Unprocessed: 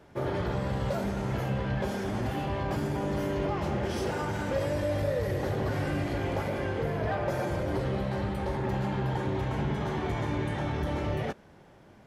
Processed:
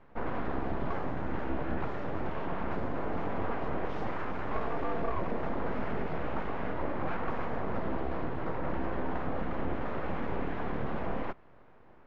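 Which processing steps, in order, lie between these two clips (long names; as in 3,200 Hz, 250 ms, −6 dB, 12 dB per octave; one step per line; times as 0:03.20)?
full-wave rectification
low-pass filter 1,800 Hz 12 dB per octave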